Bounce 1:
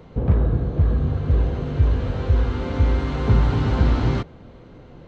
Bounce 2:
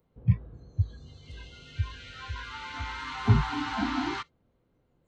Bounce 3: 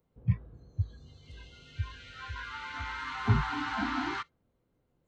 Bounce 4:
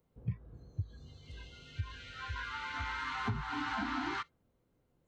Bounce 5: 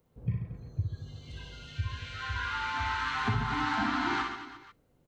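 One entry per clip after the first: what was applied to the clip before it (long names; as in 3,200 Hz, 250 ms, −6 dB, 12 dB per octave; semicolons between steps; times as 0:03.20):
noise reduction from a noise print of the clip's start 27 dB
dynamic equaliser 1,500 Hz, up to +6 dB, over −49 dBFS, Q 1.2; level −4.5 dB
downward compressor 10 to 1, threshold −32 dBFS, peak gain reduction 14 dB
reverse bouncing-ball delay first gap 60 ms, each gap 1.25×, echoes 5; level +4.5 dB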